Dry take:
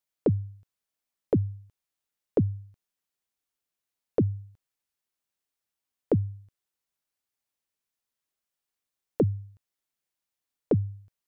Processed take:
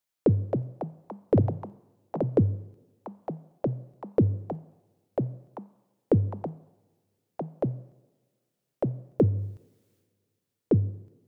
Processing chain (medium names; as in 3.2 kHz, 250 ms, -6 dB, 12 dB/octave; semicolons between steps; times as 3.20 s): ever faster or slower copies 323 ms, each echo +4 st, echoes 3, each echo -6 dB; 9.31–10.72 s: transient shaper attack -4 dB, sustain +9 dB; two-slope reverb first 0.97 s, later 2.5 s, from -20 dB, DRR 16.5 dB; trim +2 dB